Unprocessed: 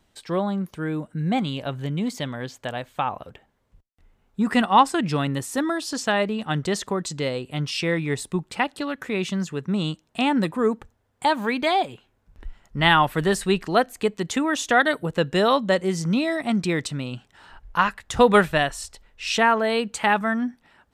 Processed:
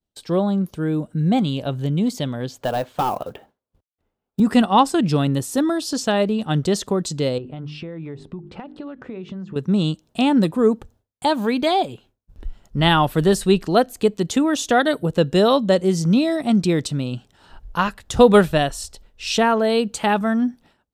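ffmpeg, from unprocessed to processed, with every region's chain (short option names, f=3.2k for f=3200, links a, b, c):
-filter_complex "[0:a]asettb=1/sr,asplit=3[a][b][c];[a]atrim=end=2.614[d];[b]atrim=start=2.61:end=4.4,asetpts=PTS-STARTPTS,afade=t=in:d=0.004:c=qsin,afade=t=out:st=1.786:d=0.004:c=qsin,highpass=40,asplit=2[e][f];[f]highpass=f=720:p=1,volume=18dB,asoftclip=type=tanh:threshold=-12dB[g];[e][g]amix=inputs=2:normalize=0,lowpass=f=1.4k:p=1,volume=-6dB,acrusher=bits=6:mode=log:mix=0:aa=0.000001[h];[c]atrim=start=4.396[i];[d][h]acrossfade=d=0.004:c1=hsin:c2=qsin[j];[j][i]acrossfade=d=0.004:c1=qsin:c2=hsin,asettb=1/sr,asplit=3[k][l][m];[k]atrim=end=7.384[n];[l]atrim=start=7.38:end=9.56,asetpts=PTS-STARTPTS,afade=t=in:d=0.004:c=qsin,afade=t=out:st=2.176:d=0.004:c=qsin,lowpass=1.9k,bandreject=f=50:t=h:w=6,bandreject=f=100:t=h:w=6,bandreject=f=150:t=h:w=6,bandreject=f=200:t=h:w=6,bandreject=f=250:t=h:w=6,bandreject=f=300:t=h:w=6,bandreject=f=350:t=h:w=6,bandreject=f=400:t=h:w=6,bandreject=f=450:t=h:w=6,acompressor=threshold=-33dB:ratio=16:attack=3.2:release=140:knee=1:detection=peak[o];[m]atrim=start=9.556[p];[n][o]acrossfade=d=0.004:c1=hsin:c2=qsin[q];[q][p]acrossfade=d=0.004:c1=qsin:c2=hsin,equalizer=f=1k:t=o:w=1:g=-5,equalizer=f=2k:t=o:w=1:g=-10,equalizer=f=8k:t=o:w=1:g=-3,agate=range=-33dB:threshold=-51dB:ratio=3:detection=peak,deesser=0.5,volume=6dB"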